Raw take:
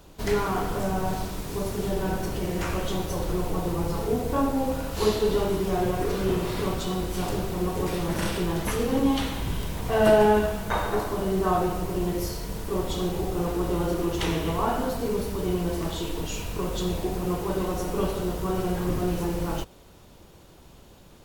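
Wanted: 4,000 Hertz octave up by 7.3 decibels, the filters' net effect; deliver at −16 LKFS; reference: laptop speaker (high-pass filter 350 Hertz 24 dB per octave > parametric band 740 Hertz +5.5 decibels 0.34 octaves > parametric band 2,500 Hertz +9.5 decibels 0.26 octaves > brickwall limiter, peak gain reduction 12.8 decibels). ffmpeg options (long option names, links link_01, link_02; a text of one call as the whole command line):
ffmpeg -i in.wav -af "highpass=frequency=350:width=0.5412,highpass=frequency=350:width=1.3066,equalizer=frequency=740:width_type=o:width=0.34:gain=5.5,equalizer=frequency=2500:width_type=o:width=0.26:gain=9.5,equalizer=frequency=4000:width_type=o:gain=8,volume=13.5dB,alimiter=limit=-6dB:level=0:latency=1" out.wav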